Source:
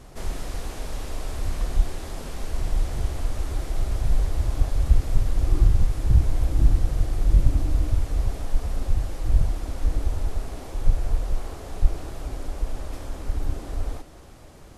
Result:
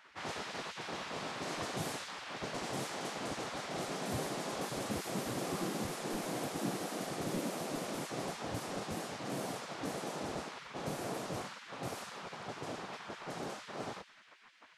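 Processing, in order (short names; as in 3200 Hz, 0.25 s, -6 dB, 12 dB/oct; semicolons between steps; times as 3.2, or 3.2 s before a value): low-pass opened by the level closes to 2400 Hz, open at -14.5 dBFS; spectral gate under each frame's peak -25 dB weak; gain +2 dB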